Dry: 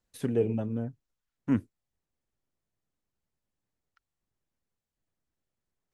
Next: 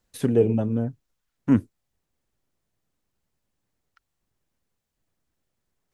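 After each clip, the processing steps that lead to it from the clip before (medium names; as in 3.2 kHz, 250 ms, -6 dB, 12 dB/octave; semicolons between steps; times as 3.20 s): dynamic bell 2.2 kHz, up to -4 dB, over -50 dBFS, Q 1.1; trim +7.5 dB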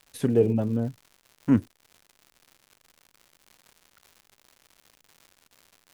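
crackle 190 per s -39 dBFS; trim -1.5 dB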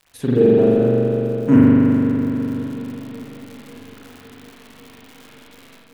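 spring tank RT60 3.3 s, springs 41 ms, chirp 55 ms, DRR -8 dB; level rider gain up to 8.5 dB; modulated delay 551 ms, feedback 73%, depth 68 cents, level -24 dB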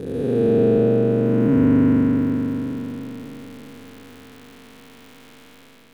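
spectral blur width 604 ms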